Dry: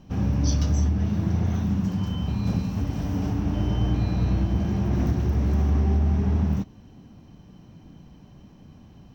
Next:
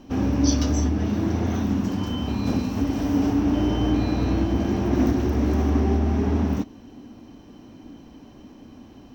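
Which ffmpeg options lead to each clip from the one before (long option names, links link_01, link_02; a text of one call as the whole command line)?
ffmpeg -i in.wav -af "lowshelf=frequency=210:width_type=q:width=3:gain=-6.5,volume=5.5dB" out.wav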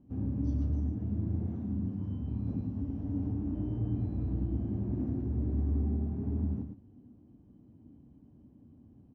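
ffmpeg -i in.wav -af "bandpass=frequency=110:width_type=q:width=1.3:csg=0,aecho=1:1:112:0.447,volume=-5.5dB" out.wav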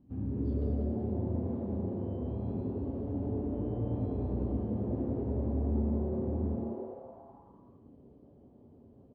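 ffmpeg -i in.wav -filter_complex "[0:a]asplit=7[link_01][link_02][link_03][link_04][link_05][link_06][link_07];[link_02]adelay=191,afreqshift=150,volume=-5dB[link_08];[link_03]adelay=382,afreqshift=300,volume=-11.4dB[link_09];[link_04]adelay=573,afreqshift=450,volume=-17.8dB[link_10];[link_05]adelay=764,afreqshift=600,volume=-24.1dB[link_11];[link_06]adelay=955,afreqshift=750,volume=-30.5dB[link_12];[link_07]adelay=1146,afreqshift=900,volume=-36.9dB[link_13];[link_01][link_08][link_09][link_10][link_11][link_12][link_13]amix=inputs=7:normalize=0,volume=-1.5dB" -ar 11025 -c:a libmp3lame -b:a 64k out.mp3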